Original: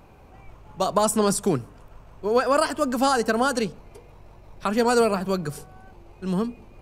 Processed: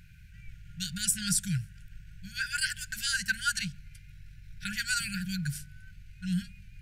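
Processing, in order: brick-wall FIR band-stop 190–1400 Hz

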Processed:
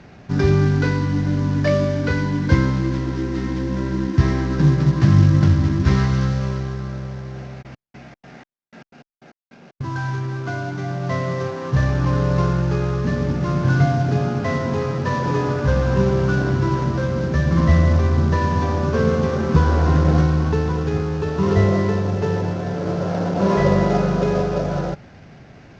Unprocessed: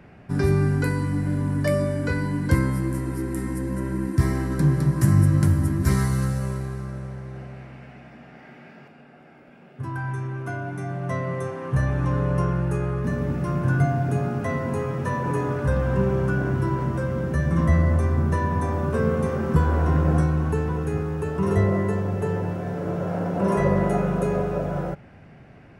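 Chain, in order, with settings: CVSD coder 32 kbps; 7.61–9.92 s: trance gate ".xx.xx...x.x..x." 153 bpm -60 dB; trim +4.5 dB; Opus 96 kbps 48 kHz

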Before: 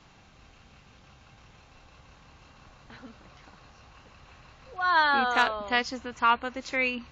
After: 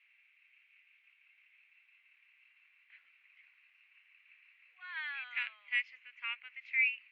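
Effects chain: Butterworth band-pass 2.3 kHz, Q 3.6

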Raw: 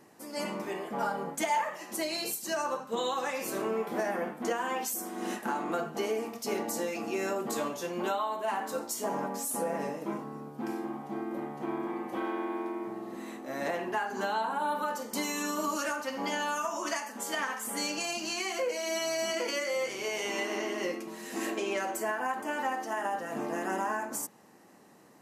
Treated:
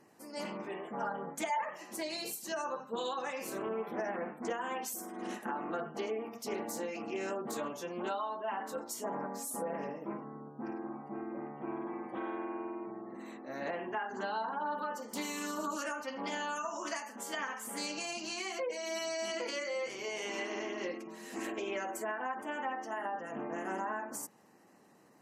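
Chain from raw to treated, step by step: spectral gate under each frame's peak -30 dB strong; loudspeaker Doppler distortion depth 0.14 ms; trim -5 dB

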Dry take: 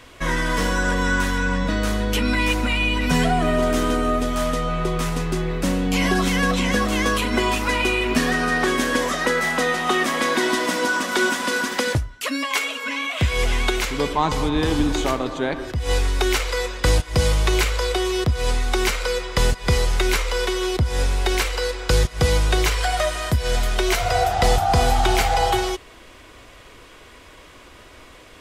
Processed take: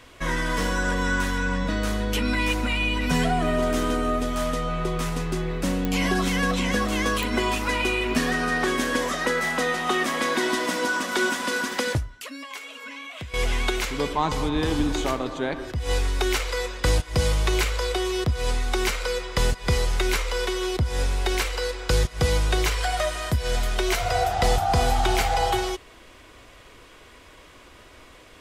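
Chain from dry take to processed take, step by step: 12.14–13.34 s: compression 3:1, threshold -35 dBFS, peak gain reduction 15 dB; clicks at 5.85/7.23 s, -9 dBFS; trim -3.5 dB

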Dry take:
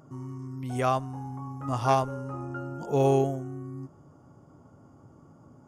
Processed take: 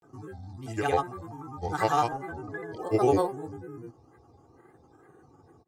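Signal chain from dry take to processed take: bass shelf 140 Hz -7.5 dB; de-hum 72.84 Hz, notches 29; granulator, grains 20 per s, pitch spread up and down by 7 st; comb 2.5 ms, depth 66%

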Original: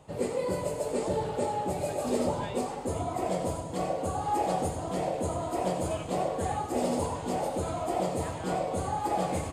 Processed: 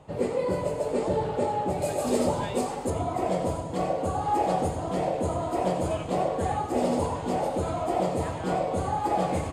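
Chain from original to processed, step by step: treble shelf 5.3 kHz -11.5 dB, from 1.82 s +2 dB, from 2.90 s -8 dB; trim +3.5 dB

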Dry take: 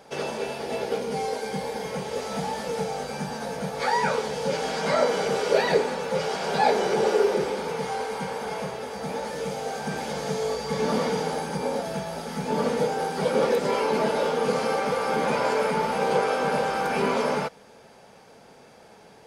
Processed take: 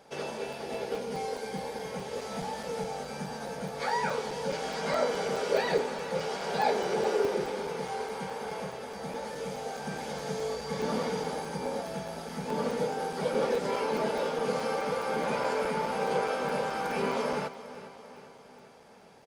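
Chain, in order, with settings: feedback delay 400 ms, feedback 57%, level -15 dB; crackling interface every 0.21 s, samples 128, zero, from 0.53 s; trim -6 dB

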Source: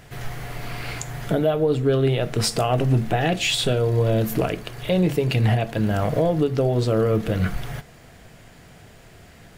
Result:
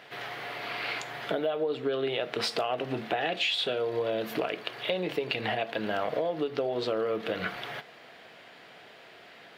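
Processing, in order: high-pass 410 Hz 12 dB/octave; resonant high shelf 5.3 kHz -12.5 dB, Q 1.5; compression, threshold -26 dBFS, peak gain reduction 9 dB

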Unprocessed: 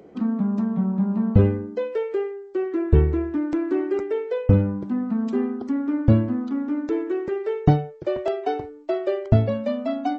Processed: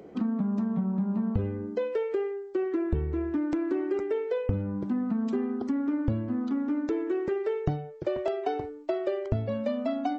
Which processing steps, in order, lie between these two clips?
compression 6:1, threshold -25 dBFS, peak gain reduction 14.5 dB

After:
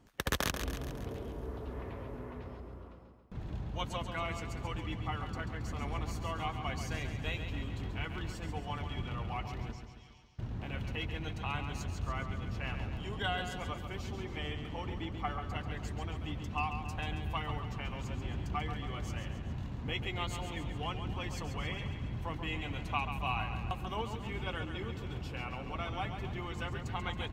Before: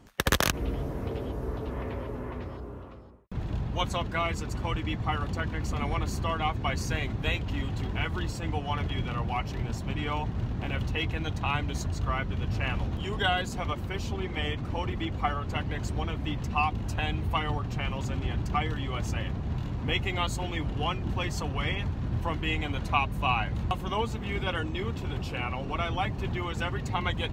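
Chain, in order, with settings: 9.72–10.39 s: band-pass filter 5.4 kHz, Q 4.6; on a send: feedback delay 137 ms, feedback 56%, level -8 dB; on the sum: trim -8.5 dB

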